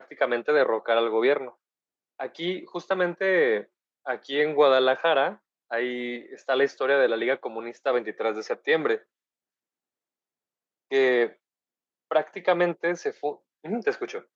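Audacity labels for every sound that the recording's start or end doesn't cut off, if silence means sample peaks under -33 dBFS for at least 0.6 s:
2.200000	8.970000	sound
10.920000	11.270000	sound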